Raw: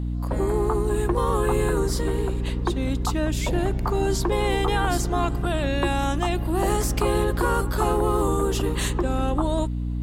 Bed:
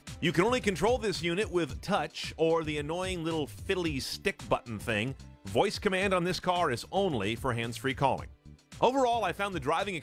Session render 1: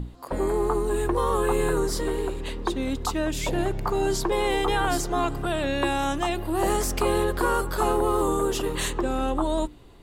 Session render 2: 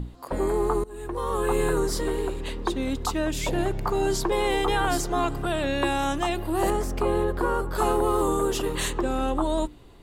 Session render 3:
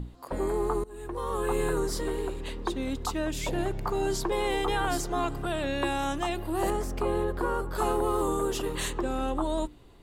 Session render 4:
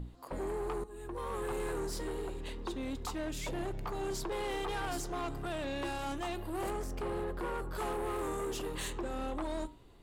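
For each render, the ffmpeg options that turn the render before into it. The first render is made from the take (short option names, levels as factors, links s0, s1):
-af "bandreject=f=60:t=h:w=6,bandreject=f=120:t=h:w=6,bandreject=f=180:t=h:w=6,bandreject=f=240:t=h:w=6,bandreject=f=300:t=h:w=6,bandreject=f=360:t=h:w=6"
-filter_complex "[0:a]asettb=1/sr,asplit=3[s0][s1][s2];[s0]atrim=end=6.704[s3];[s1]atrim=start=6.7:end=7.75,asetpts=PTS-STARTPTS,afade=t=in:d=0.004:c=qsin,afade=t=out:st=1.046:d=0.004:c=qsin,highshelf=f=2000:g=-11.5[s4];[s2]atrim=start=7.746[s5];[s3][s4]acrossfade=d=0.004:c1=hsin:c2=qsin[s6];[s6][s5]acrossfade=d=0.004:c1=qsin:c2=hsin,asplit=2[s7][s8];[s7]atrim=end=0.84,asetpts=PTS-STARTPTS,afade=t=out:st=0.836:d=0.004:c=hsin:silence=0.0749894[s9];[s8]atrim=start=0.84,asetpts=PTS-STARTPTS,afade=t=in:d=0.73:silence=0.0749894[s10];[s9][s10]concat=n=2:v=0:a=1"
-af "volume=0.631"
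-af "flanger=delay=5.8:depth=4.2:regen=-85:speed=0.27:shape=triangular,asoftclip=type=tanh:threshold=0.0251"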